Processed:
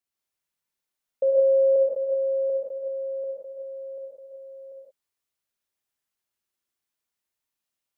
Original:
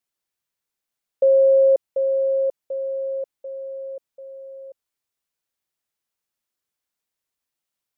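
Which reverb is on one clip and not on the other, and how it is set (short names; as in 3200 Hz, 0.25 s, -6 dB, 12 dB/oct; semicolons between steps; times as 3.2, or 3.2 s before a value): non-linear reverb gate 0.2 s rising, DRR -2.5 dB; gain -5.5 dB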